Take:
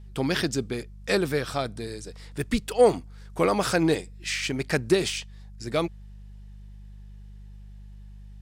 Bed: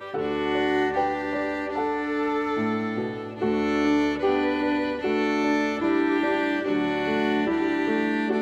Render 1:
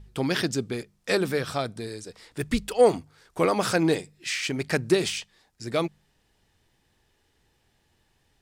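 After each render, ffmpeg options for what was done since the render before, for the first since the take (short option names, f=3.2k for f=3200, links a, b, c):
-af "bandreject=f=50:t=h:w=4,bandreject=f=100:t=h:w=4,bandreject=f=150:t=h:w=4,bandreject=f=200:t=h:w=4"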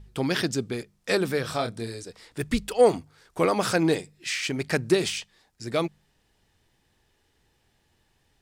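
-filter_complex "[0:a]asettb=1/sr,asplit=3[a][b][c];[a]atrim=end=1.424[d];[b]atrim=start=1.42:end=2.03,asetpts=PTS-STARTPTS,afade=t=in:d=0.004:c=qsin,afade=t=out:st=0.606:d=0.004:c=qsin,asplit=2[e][f];[f]adelay=26,volume=-5.5dB[g];[e][g]amix=inputs=2:normalize=0,atrim=end_sample=26901[h];[c]atrim=start=2.026[i];[d][h]acrossfade=d=0.004:c1=hsin:c2=qsin[j];[j][i]acrossfade=d=0.004:c1=qsin:c2=hsin"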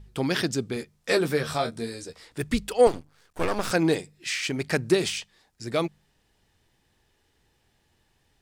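-filter_complex "[0:a]asettb=1/sr,asplit=3[a][b][c];[a]atrim=end=0.754[d];[b]atrim=start=0.75:end=2.24,asetpts=PTS-STARTPTS,afade=t=in:d=0.004:c=qsin,afade=t=out:st=1.486:d=0.004:c=qsin,asplit=2[e][f];[f]adelay=13,volume=-6dB[g];[e][g]amix=inputs=2:normalize=0,atrim=end_sample=65709[h];[c]atrim=start=2.236[i];[d][h]acrossfade=d=0.004:c1=hsin:c2=qsin[j];[j][i]acrossfade=d=0.004:c1=qsin:c2=hsin,asettb=1/sr,asplit=3[k][l][m];[k]atrim=end=2.874[n];[l]atrim=start=2.87:end=3.71,asetpts=PTS-STARTPTS,afade=t=in:d=0.004:c=qsin,afade=t=out:st=0.836:d=0.004:c=qsin,aeval=exprs='max(val(0),0)':c=same[o];[m]atrim=start=3.706[p];[n][o]acrossfade=d=0.004:c1=hsin:c2=qsin[q];[q][p]acrossfade=d=0.004:c1=qsin:c2=hsin"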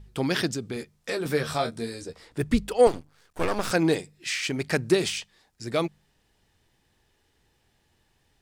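-filter_complex "[0:a]asettb=1/sr,asplit=3[a][b][c];[a]atrim=end=0.484[d];[b]atrim=start=0.48:end=1.26,asetpts=PTS-STARTPTS,afade=t=in:d=0.004:c=qsin,afade=t=out:st=0.776:d=0.004:c=qsin,acompressor=threshold=-28dB:ratio=2.5:attack=3.2:release=140:knee=1:detection=peak[e];[c]atrim=start=1.256[f];[d][e]acrossfade=d=0.004:c1=hsin:c2=qsin[g];[g][f]acrossfade=d=0.004:c1=qsin:c2=hsin,asettb=1/sr,asplit=3[h][i][j];[h]atrim=end=2.014[k];[i]atrim=start=2.01:end=2.77,asetpts=PTS-STARTPTS,afade=t=in:d=0.004:c=qsin,afade=t=out:st=0.756:d=0.004:c=qsin,tiltshelf=f=1.3k:g=3.5[l];[j]atrim=start=2.766[m];[k][l]acrossfade=d=0.004:c1=hsin:c2=qsin[n];[n][m]acrossfade=d=0.004:c1=qsin:c2=hsin"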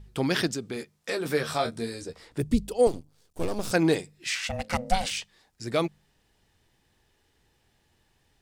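-filter_complex "[0:a]asettb=1/sr,asplit=3[a][b][c];[a]atrim=end=0.474[d];[b]atrim=start=0.47:end=1.66,asetpts=PTS-STARTPTS,afade=t=in:d=0.004:c=qsin,afade=t=out:st=1.186:d=0.004:c=qsin,highpass=f=170:p=1[e];[c]atrim=start=1.656[f];[d][e]acrossfade=d=0.004:c1=hsin:c2=qsin[g];[g][f]acrossfade=d=0.004:c1=qsin:c2=hsin,asettb=1/sr,asplit=3[h][i][j];[h]atrim=end=2.404[k];[i]atrim=start=2.4:end=3.74,asetpts=PTS-STARTPTS,afade=t=in:d=0.004:c=qsin,afade=t=out:st=1.336:d=0.004:c=qsin,equalizer=f=1.6k:w=0.73:g=-14.5[l];[j]atrim=start=3.736[m];[k][l]acrossfade=d=0.004:c1=hsin:c2=qsin[n];[n][m]acrossfade=d=0.004:c1=qsin:c2=hsin,asettb=1/sr,asplit=3[o][p][q];[o]atrim=end=4.354[r];[p]atrim=start=4.35:end=5.11,asetpts=PTS-STARTPTS,afade=t=in:d=0.004:c=qsin,afade=t=out:st=0.756:d=0.004:c=qsin,aeval=exprs='val(0)*sin(2*PI*370*n/s)':c=same[s];[q]atrim=start=5.106[t];[r][s]acrossfade=d=0.004:c1=hsin:c2=qsin[u];[u][t]acrossfade=d=0.004:c1=qsin:c2=hsin"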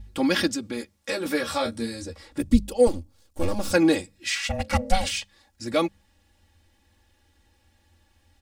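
-af "equalizer=f=84:w=2.4:g=11.5,aecho=1:1:3.6:0.97"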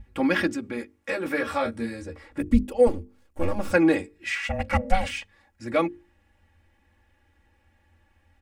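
-af "highshelf=f=3k:t=q:w=1.5:g=-9.5,bandreject=f=50:t=h:w=6,bandreject=f=100:t=h:w=6,bandreject=f=150:t=h:w=6,bandreject=f=200:t=h:w=6,bandreject=f=250:t=h:w=6,bandreject=f=300:t=h:w=6,bandreject=f=350:t=h:w=6,bandreject=f=400:t=h:w=6,bandreject=f=450:t=h:w=6"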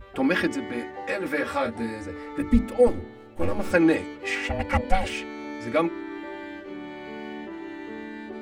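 -filter_complex "[1:a]volume=-13dB[a];[0:a][a]amix=inputs=2:normalize=0"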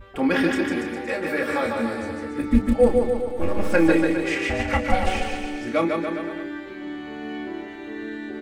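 -filter_complex "[0:a]asplit=2[a][b];[b]adelay=30,volume=-8dB[c];[a][c]amix=inputs=2:normalize=0,aecho=1:1:150|285|406.5|515.8|614.3:0.631|0.398|0.251|0.158|0.1"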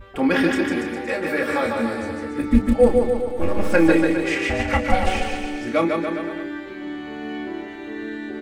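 -af "volume=2dB"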